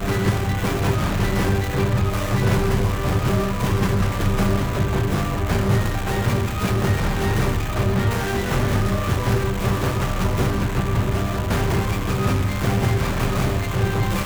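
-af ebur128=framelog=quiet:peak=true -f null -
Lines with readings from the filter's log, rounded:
Integrated loudness:
  I:         -21.6 LUFS
  Threshold: -31.6 LUFS
Loudness range:
  LRA:         0.9 LU
  Threshold: -41.6 LUFS
  LRA low:   -22.0 LUFS
  LRA high:  -21.1 LUFS
True peak:
  Peak:       -7.9 dBFS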